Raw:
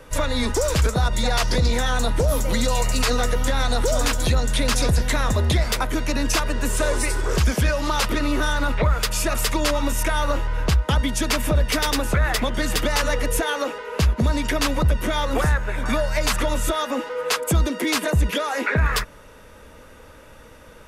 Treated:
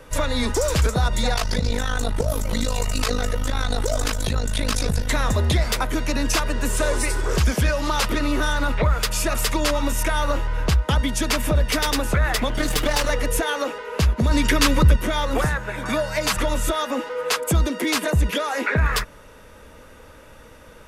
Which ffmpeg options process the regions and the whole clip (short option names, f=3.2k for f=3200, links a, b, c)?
-filter_complex "[0:a]asettb=1/sr,asplit=3[a][b][c];[a]atrim=end=1.344[d];[b]atrim=start=1.34:end=5.1,asetpts=PTS-STARTPTS,afade=t=in:d=0.004:c=qsin,afade=t=out:st=3.756:d=0.004:c=qsin,aecho=1:1:4.6:0.39,atrim=end_sample=165816,tremolo=f=52:d=0.824[e];[c]atrim=start=5.096[f];[d][e]acrossfade=d=0.004:c1=hsin:c2=qsin[g];[g][f]acrossfade=d=0.004:c1=qsin:c2=hsin,asettb=1/sr,asplit=3[h][i][j];[h]atrim=end=12.484[k];[i]atrim=start=12.48:end=13.1,asetpts=PTS-STARTPTS,afade=t=in:d=0.004:c=qsin,afade=t=out:st=0.616:d=0.004:c=qsin,aecho=1:1:6.7:0.73,atrim=end_sample=27342,aeval=exprs='clip(val(0),-1,0.075)':c=same[l];[j]atrim=start=13.096[m];[k][l]acrossfade=d=0.004:c1=hsin:c2=qsin[n];[n][m]acrossfade=d=0.004:c1=qsin:c2=hsin,asettb=1/sr,asplit=3[o][p][q];[o]atrim=end=14.314[r];[p]atrim=start=14.31:end=14.96,asetpts=PTS-STARTPTS,afade=t=in:d=0.004:c=qsin,afade=t=out:st=0.646:d=0.004:c=qsin,equalizer=f=710:t=o:w=0.36:g=-13.5,acontrast=29[s];[q]atrim=start=14.956[t];[r][s]acrossfade=d=0.004:c1=hsin:c2=qsin[u];[u][t]acrossfade=d=0.004:c1=qsin:c2=hsin,asettb=1/sr,asplit=3[v][w][x];[v]atrim=end=15.474[y];[w]atrim=start=15.47:end=16.37,asetpts=PTS-STARTPTS,afade=t=in:d=0.004:c=qsin,afade=t=out:st=0.896:d=0.004:c=qsin,highpass=75,aecho=1:1:6.2:0.32,atrim=end_sample=39690[z];[x]atrim=start=16.366[aa];[y][z]acrossfade=d=0.004:c1=hsin:c2=qsin[ab];[ab][aa]acrossfade=d=0.004:c1=qsin:c2=hsin"